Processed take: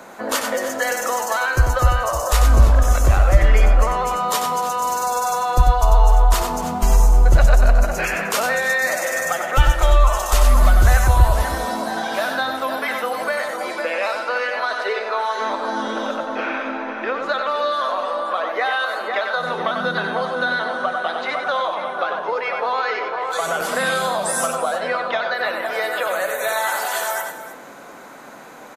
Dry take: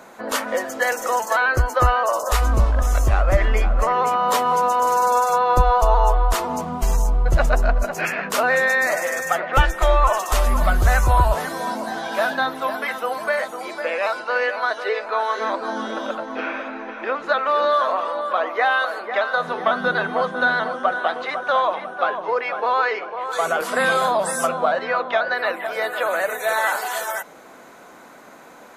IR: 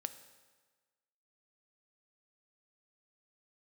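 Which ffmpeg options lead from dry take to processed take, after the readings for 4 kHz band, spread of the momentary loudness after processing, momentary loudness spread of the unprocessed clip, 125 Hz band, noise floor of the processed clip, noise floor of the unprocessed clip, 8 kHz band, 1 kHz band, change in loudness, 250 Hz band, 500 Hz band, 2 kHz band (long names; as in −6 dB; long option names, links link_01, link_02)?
+3.0 dB, 9 LU, 8 LU, +4.5 dB, −36 dBFS, −44 dBFS, +4.5 dB, −1.0 dB, +1.0 dB, +1.5 dB, −1.0 dB, −0.5 dB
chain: -filter_complex "[0:a]aecho=1:1:94|306|321:0.473|0.158|0.1,asplit=2[link_01][link_02];[1:a]atrim=start_sample=2205[link_03];[link_02][link_03]afir=irnorm=-1:irlink=0,volume=8dB[link_04];[link_01][link_04]amix=inputs=2:normalize=0,acrossover=split=160|3000[link_05][link_06][link_07];[link_06]acompressor=threshold=-15dB:ratio=3[link_08];[link_05][link_08][link_07]amix=inputs=3:normalize=0,volume=-6dB"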